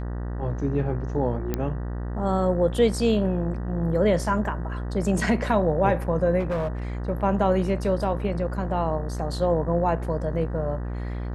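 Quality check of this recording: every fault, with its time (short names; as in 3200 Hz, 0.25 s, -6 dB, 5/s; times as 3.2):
buzz 60 Hz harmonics 32 -30 dBFS
1.54 pop -12 dBFS
6.39–6.68 clipped -22.5 dBFS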